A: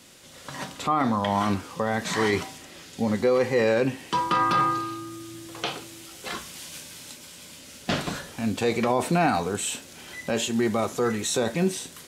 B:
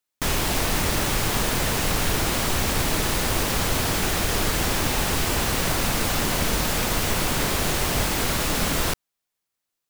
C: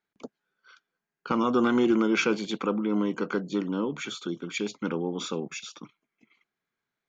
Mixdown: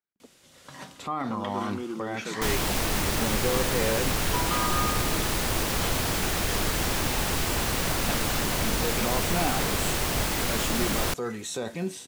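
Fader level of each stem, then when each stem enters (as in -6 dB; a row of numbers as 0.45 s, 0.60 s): -7.5 dB, -3.5 dB, -12.0 dB; 0.20 s, 2.20 s, 0.00 s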